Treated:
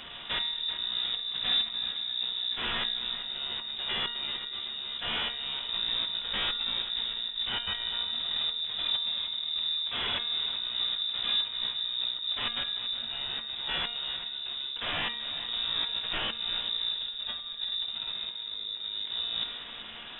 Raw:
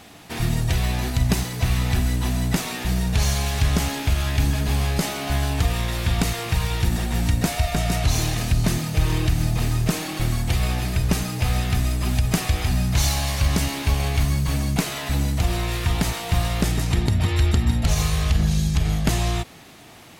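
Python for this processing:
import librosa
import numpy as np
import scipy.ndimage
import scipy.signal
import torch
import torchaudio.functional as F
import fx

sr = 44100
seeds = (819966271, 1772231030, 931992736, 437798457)

p1 = fx.over_compress(x, sr, threshold_db=-30.0, ratio=-1.0)
p2 = 10.0 ** (-19.0 / 20.0) * (np.abs((p1 / 10.0 ** (-19.0 / 20.0) + 3.0) % 4.0 - 2.0) - 1.0)
p3 = fx.comb_fb(p2, sr, f0_hz=120.0, decay_s=0.82, harmonics='odd', damping=0.0, mix_pct=80)
p4 = p3 + fx.echo_single(p3, sr, ms=385, db=-12.0, dry=0)
p5 = fx.freq_invert(p4, sr, carrier_hz=3700)
y = F.gain(torch.from_numpy(p5), 7.0).numpy()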